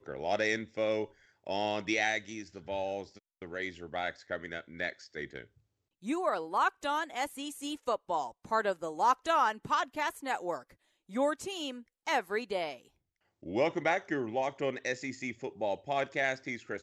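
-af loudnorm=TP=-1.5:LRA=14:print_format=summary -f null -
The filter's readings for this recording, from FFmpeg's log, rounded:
Input Integrated:    -33.6 LUFS
Input True Peak:     -14.4 dBTP
Input LRA:             3.6 LU
Input Threshold:     -44.0 LUFS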